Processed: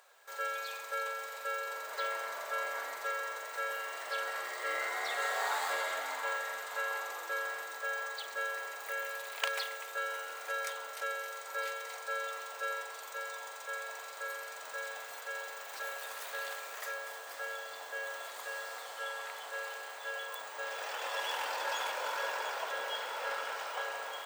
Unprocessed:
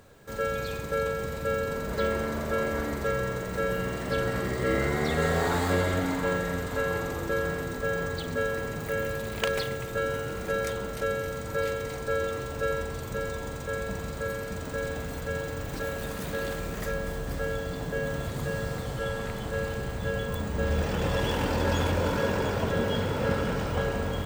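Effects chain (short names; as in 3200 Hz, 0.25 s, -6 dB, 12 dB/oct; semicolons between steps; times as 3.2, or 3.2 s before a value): HPF 690 Hz 24 dB/oct; gain -3 dB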